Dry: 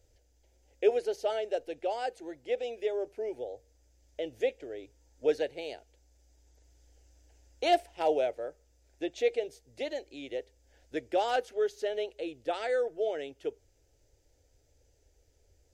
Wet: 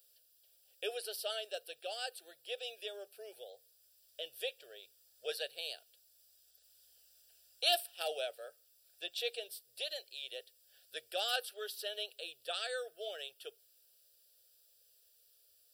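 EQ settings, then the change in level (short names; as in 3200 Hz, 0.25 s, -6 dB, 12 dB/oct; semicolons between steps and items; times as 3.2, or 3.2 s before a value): differentiator; high shelf 4200 Hz +7 dB; fixed phaser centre 1400 Hz, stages 8; +11.0 dB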